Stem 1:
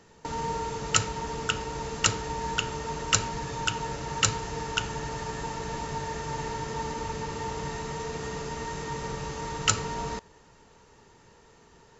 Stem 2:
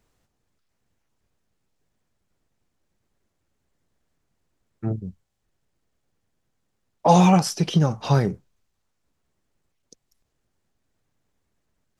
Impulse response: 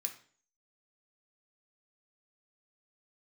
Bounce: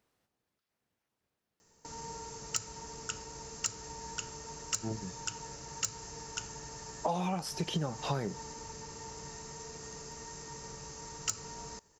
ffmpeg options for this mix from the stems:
-filter_complex "[0:a]aexciter=amount=7.7:drive=3.9:freq=5k,adelay=1600,volume=-13.5dB[a];[1:a]highpass=f=220:p=1,volume=-5dB[b];[a][b]amix=inputs=2:normalize=0,aeval=exprs='0.447*(abs(mod(val(0)/0.447+3,4)-2)-1)':c=same,equalizer=f=7.2k:w=2.2:g=-4.5,acompressor=threshold=-29dB:ratio=10"

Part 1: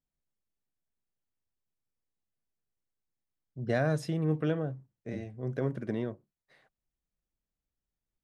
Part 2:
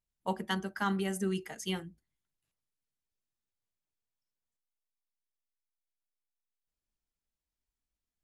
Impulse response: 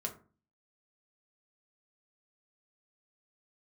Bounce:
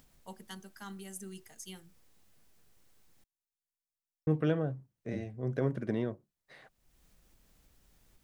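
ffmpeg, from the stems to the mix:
-filter_complex "[0:a]acompressor=mode=upward:threshold=-45dB:ratio=2.5,volume=0.5dB,asplit=3[a][b][c];[a]atrim=end=3.24,asetpts=PTS-STARTPTS,afade=t=out:st=3.236:d=0.004:c=hsin[d];[b]atrim=start=3.24:end=4.27,asetpts=PTS-STARTPTS,volume=0[e];[c]atrim=start=4.27,asetpts=PTS-STARTPTS,afade=t=in:d=0.004:c=hsin[f];[d][e][f]concat=n=3:v=0:a=1[g];[1:a]bass=f=250:g=3,treble=f=4k:g=14,volume=-15.5dB[h];[g][h]amix=inputs=2:normalize=0"

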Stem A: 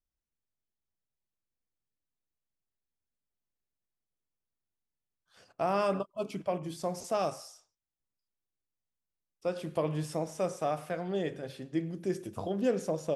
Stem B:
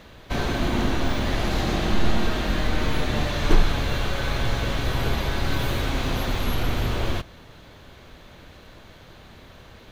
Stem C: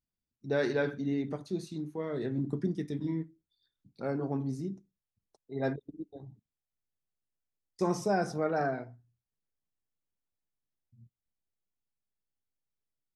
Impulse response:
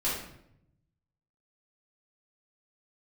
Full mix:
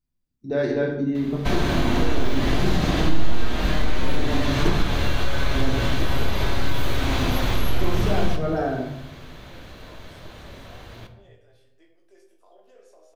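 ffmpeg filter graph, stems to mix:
-filter_complex "[0:a]flanger=delay=20:depth=2.4:speed=0.26,highpass=f=440:w=0.5412,highpass=f=440:w=1.3066,alimiter=level_in=8.5dB:limit=-24dB:level=0:latency=1:release=29,volume=-8.5dB,adelay=50,volume=-17dB,asplit=2[a][b];[b]volume=-7.5dB[c];[1:a]adelay=1150,volume=2dB,asplit=2[d][e];[e]volume=-14dB[f];[2:a]lowshelf=f=380:g=9,volume=-4.5dB,asplit=2[g][h];[h]volume=-3.5dB[i];[3:a]atrim=start_sample=2205[j];[c][f][i]amix=inputs=3:normalize=0[k];[k][j]afir=irnorm=-1:irlink=0[l];[a][d][g][l]amix=inputs=4:normalize=0,acompressor=threshold=-17dB:ratio=2"

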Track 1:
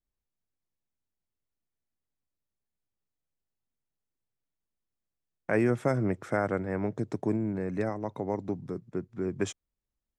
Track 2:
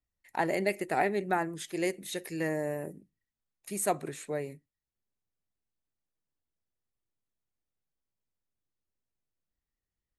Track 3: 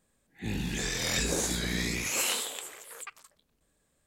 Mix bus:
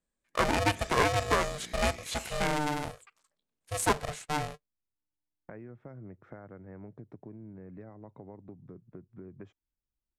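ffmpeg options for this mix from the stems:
-filter_complex "[0:a]lowshelf=f=210:g=8,acompressor=threshold=-35dB:ratio=5,lowpass=2.1k,volume=-9.5dB[a];[1:a]agate=range=-21dB:threshold=-43dB:ratio=16:detection=peak,aeval=exprs='val(0)*sgn(sin(2*PI*300*n/s))':c=same,volume=2.5dB[b];[2:a]highpass=130,volume=-15dB[c];[a][b][c]amix=inputs=3:normalize=0,lowpass=9.6k"

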